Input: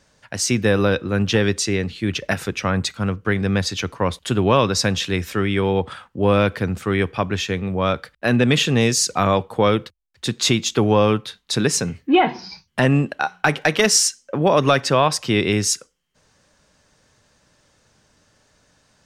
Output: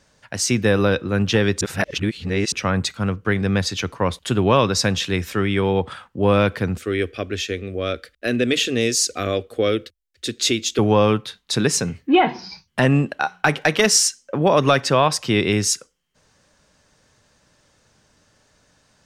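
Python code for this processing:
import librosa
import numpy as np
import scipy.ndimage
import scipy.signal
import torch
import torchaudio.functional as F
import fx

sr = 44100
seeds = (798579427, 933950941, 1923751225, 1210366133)

y = fx.fixed_phaser(x, sr, hz=380.0, stages=4, at=(6.77, 10.79))
y = fx.edit(y, sr, fx.reverse_span(start_s=1.61, length_s=0.91), tone=tone)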